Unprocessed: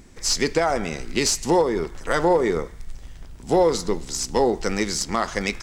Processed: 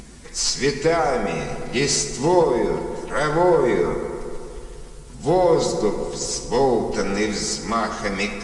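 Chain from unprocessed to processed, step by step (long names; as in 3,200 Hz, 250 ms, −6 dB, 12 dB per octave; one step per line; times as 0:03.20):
upward compression, threshold −34 dBFS
background noise blue −47 dBFS
phase-vocoder stretch with locked phases 1.5×
on a send at −4.5 dB: convolution reverb RT60 2.7 s, pre-delay 3 ms
on the sum: AAC 96 kbit/s 22,050 Hz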